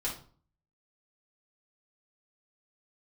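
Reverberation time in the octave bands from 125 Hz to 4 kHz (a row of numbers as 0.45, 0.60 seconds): 0.65, 0.55, 0.45, 0.45, 0.35, 0.35 seconds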